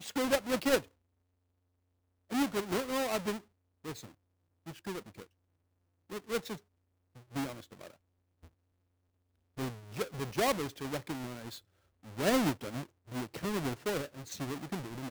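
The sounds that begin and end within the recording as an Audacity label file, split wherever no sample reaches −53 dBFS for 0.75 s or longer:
2.300000	5.240000	sound
6.100000	8.450000	sound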